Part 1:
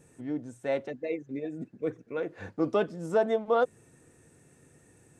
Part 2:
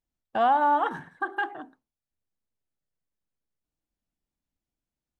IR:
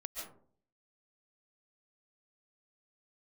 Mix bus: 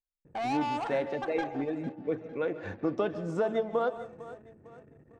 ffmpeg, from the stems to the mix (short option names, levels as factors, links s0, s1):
-filter_complex "[0:a]acontrast=47,lowpass=5400,acompressor=threshold=0.0794:ratio=6,adelay=250,volume=0.562,asplit=3[s0][s1][s2];[s1]volume=0.398[s3];[s2]volume=0.188[s4];[1:a]equalizer=f=770:w=3.5:g=6.5,asoftclip=type=tanh:threshold=0.0668,volume=0.398,asplit=3[s5][s6][s7];[s6]volume=0.211[s8];[s7]volume=0.188[s9];[2:a]atrim=start_sample=2205[s10];[s3][s8]amix=inputs=2:normalize=0[s11];[s11][s10]afir=irnorm=-1:irlink=0[s12];[s4][s9]amix=inputs=2:normalize=0,aecho=0:1:453|906|1359|1812|2265|2718:1|0.42|0.176|0.0741|0.0311|0.0131[s13];[s0][s5][s12][s13]amix=inputs=4:normalize=0,anlmdn=0.000398"